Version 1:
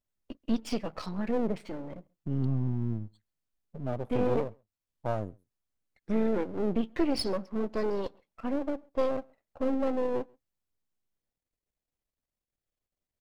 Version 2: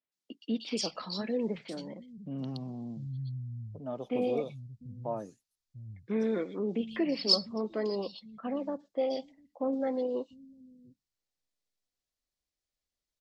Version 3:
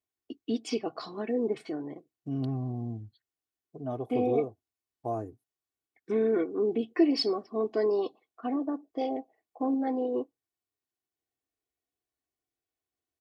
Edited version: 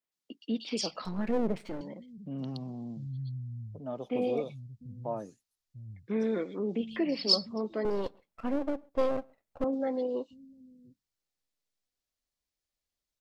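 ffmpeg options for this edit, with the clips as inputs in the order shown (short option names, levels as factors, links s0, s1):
-filter_complex "[0:a]asplit=2[s0][s1];[1:a]asplit=3[s2][s3][s4];[s2]atrim=end=1.052[s5];[s0]atrim=start=1.048:end=1.812[s6];[s3]atrim=start=1.808:end=7.852[s7];[s1]atrim=start=7.848:end=9.642[s8];[s4]atrim=start=9.638[s9];[s5][s6]acrossfade=d=0.004:c1=hsin:c2=hsin[s10];[s10][s7]acrossfade=d=0.004:c1=hsin:c2=hsin[s11];[s11][s8]acrossfade=d=0.004:c1=hsin:c2=hsin[s12];[s12][s9]acrossfade=d=0.004:c1=hsin:c2=hsin"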